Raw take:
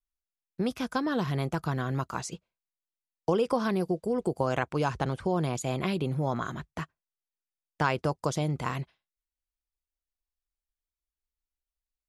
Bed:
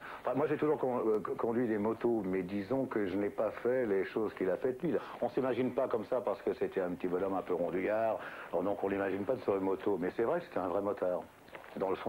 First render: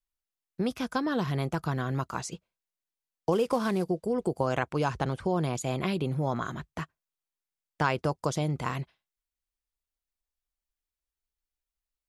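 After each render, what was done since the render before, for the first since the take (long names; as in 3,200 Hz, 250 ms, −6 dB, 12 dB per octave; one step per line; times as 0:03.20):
0:03.32–0:03.84: variable-slope delta modulation 64 kbit/s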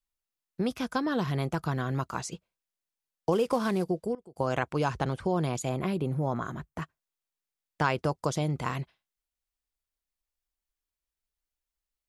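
0:03.80–0:04.71: duck −22 dB, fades 0.35 s logarithmic
0:05.69–0:06.82: parametric band 3,800 Hz −8 dB 1.9 octaves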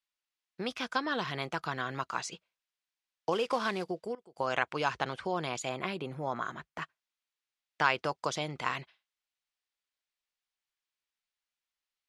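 low-pass filter 3,100 Hz 12 dB per octave
spectral tilt +4.5 dB per octave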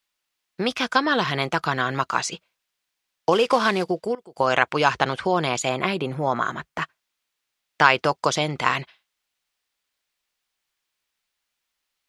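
level +11.5 dB
brickwall limiter −1 dBFS, peak gain reduction 2 dB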